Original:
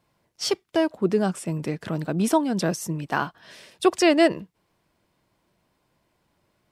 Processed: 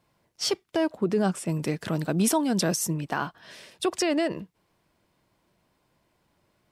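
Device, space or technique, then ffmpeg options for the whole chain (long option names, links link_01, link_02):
stacked limiters: -filter_complex "[0:a]alimiter=limit=-11.5dB:level=0:latency=1:release=146,alimiter=limit=-15.5dB:level=0:latency=1:release=27,asettb=1/sr,asplit=3[link_01][link_02][link_03];[link_01]atrim=end=1.494[link_04];[link_02]atrim=start=1.49:end=2.94,asetpts=PTS-STARTPTS,afade=type=in:duration=0.004:curve=qsin,afade=type=out:start_time=1.446:duration=0.004:curve=qsin,highshelf=frequency=3900:gain=7[link_05];[link_03]atrim=start=2.936[link_06];[link_04][link_05]acrossfade=duration=0.004:curve1=hsin:curve2=qsin[link_07];[link_07][link_06]acrossfade=duration=0.004:curve1=qsin:curve2=hsin"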